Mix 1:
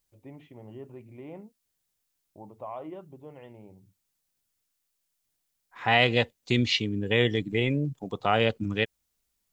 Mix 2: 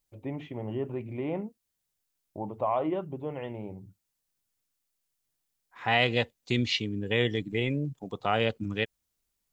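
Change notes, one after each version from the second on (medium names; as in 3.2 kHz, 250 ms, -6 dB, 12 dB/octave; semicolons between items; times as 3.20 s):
first voice +10.5 dB; second voice -3.0 dB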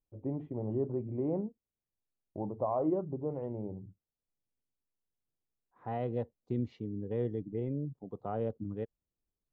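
second voice -5.5 dB; master: add FFT filter 460 Hz 0 dB, 1.2 kHz -10 dB, 2.5 kHz -29 dB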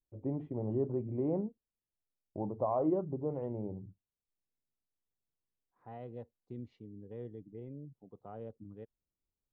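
second voice -11.0 dB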